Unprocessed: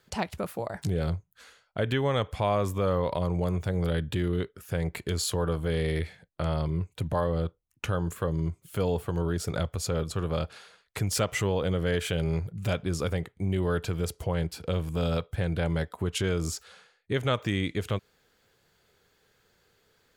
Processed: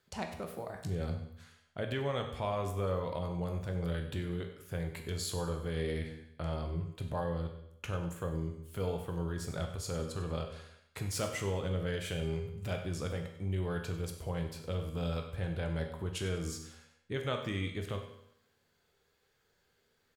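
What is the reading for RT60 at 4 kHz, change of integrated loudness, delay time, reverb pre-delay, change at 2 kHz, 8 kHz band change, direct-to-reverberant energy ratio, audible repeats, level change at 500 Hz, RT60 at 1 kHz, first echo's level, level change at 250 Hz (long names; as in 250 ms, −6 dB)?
0.75 s, −7.5 dB, 97 ms, 13 ms, −7.5 dB, −7.5 dB, 3.5 dB, 3, −7.5 dB, 0.80 s, −14.5 dB, −8.0 dB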